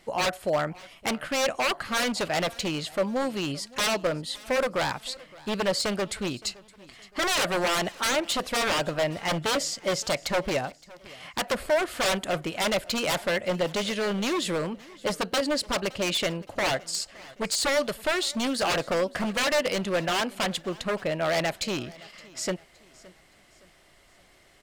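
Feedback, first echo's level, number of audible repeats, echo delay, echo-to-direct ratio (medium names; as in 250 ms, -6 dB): 40%, -22.0 dB, 2, 567 ms, -21.5 dB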